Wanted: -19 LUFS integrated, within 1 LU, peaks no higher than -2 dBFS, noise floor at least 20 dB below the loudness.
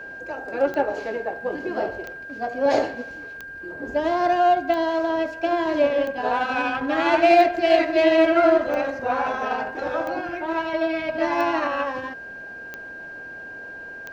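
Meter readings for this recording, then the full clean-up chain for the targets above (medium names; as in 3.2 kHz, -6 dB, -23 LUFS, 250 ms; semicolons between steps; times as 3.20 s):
clicks found 11; steady tone 1.6 kHz; tone level -35 dBFS; loudness -22.0 LUFS; peak level -6.5 dBFS; loudness target -19.0 LUFS
-> de-click; band-stop 1.6 kHz, Q 30; trim +3 dB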